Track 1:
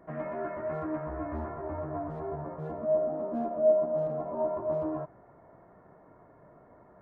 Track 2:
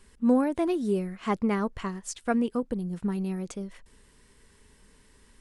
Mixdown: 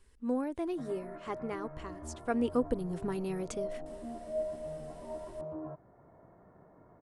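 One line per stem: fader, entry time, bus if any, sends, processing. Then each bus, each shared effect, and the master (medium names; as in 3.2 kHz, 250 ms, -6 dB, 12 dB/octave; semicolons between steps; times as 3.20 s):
-5.5 dB, 0.70 s, no send, auto duck -8 dB, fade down 1.15 s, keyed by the second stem
2.15 s -10.5 dB -> 2.51 s -0.5 dB, 0.00 s, no send, peaking EQ 200 Hz -15 dB 0.37 oct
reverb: none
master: bass shelf 410 Hz +5.5 dB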